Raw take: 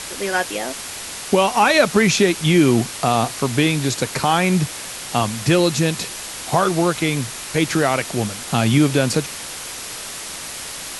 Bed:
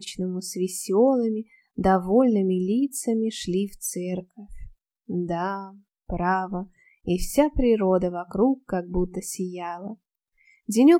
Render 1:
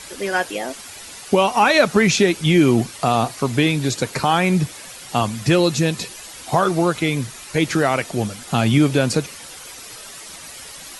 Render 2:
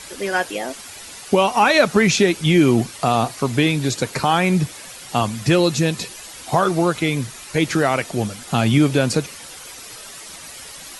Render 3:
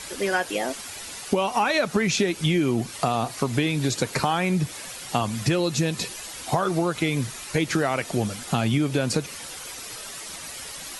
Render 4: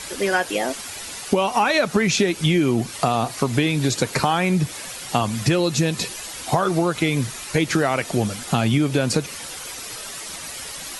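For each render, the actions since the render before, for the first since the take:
noise reduction 10 dB, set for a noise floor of -32 dBFS
no audible change
compression 6:1, threshold -19 dBFS, peak gain reduction 10 dB
trim +3.5 dB

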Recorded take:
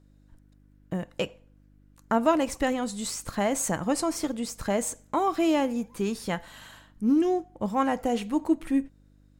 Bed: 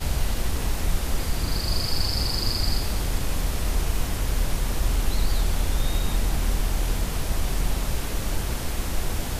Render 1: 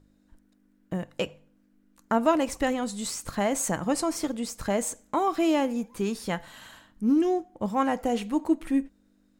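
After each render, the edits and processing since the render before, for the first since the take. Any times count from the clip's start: de-hum 50 Hz, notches 3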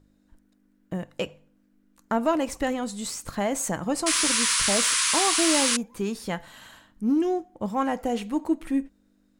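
4.06–5.77 s: painted sound noise 940–11000 Hz -23 dBFS; saturation -11 dBFS, distortion -24 dB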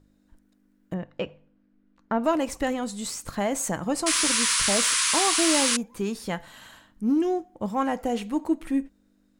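0.94–2.24 s: distance through air 220 m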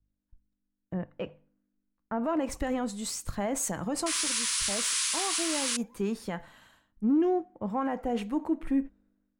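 peak limiter -21.5 dBFS, peak gain reduction 9 dB; three bands expanded up and down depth 70%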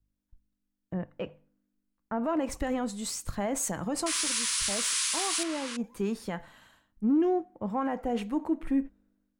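5.43–5.84 s: low-pass 1.6 kHz 6 dB/octave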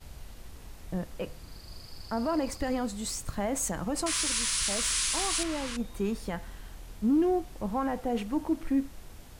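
add bed -21 dB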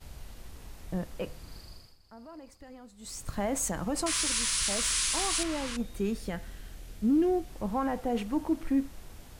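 1.59–3.35 s: dip -18.5 dB, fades 0.38 s; 5.84–7.49 s: peaking EQ 970 Hz -8 dB 0.64 oct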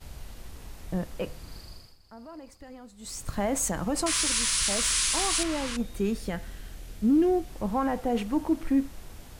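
trim +3 dB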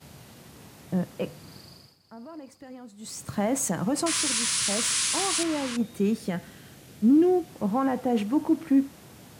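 high-pass 120 Hz 24 dB/octave; bass shelf 260 Hz +6.5 dB

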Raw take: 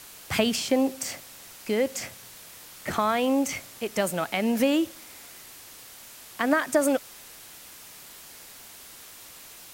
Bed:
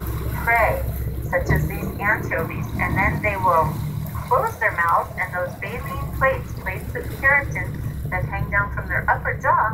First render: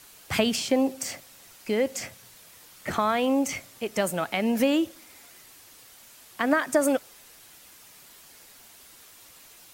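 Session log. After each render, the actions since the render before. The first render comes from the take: noise reduction 6 dB, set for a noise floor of -47 dBFS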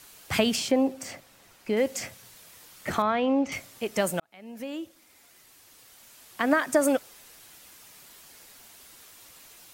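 0.71–1.77 s: treble shelf 3.3 kHz -9 dB; 3.02–3.52 s: distance through air 210 m; 4.20–6.49 s: fade in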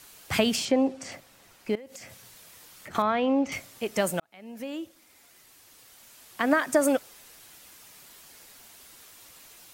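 0.65–1.12 s: low-pass 7.4 kHz; 1.75–2.95 s: compression 16:1, threshold -40 dBFS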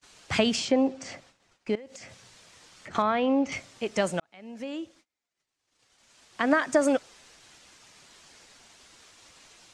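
low-pass 7.6 kHz 24 dB/octave; gate -55 dBFS, range -30 dB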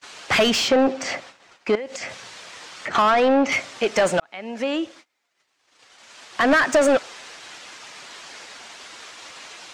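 overdrive pedal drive 24 dB, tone 2.8 kHz, clips at -8 dBFS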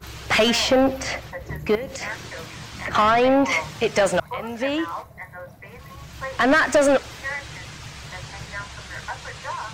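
add bed -13.5 dB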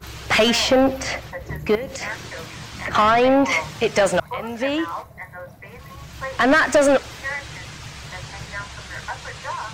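trim +1.5 dB

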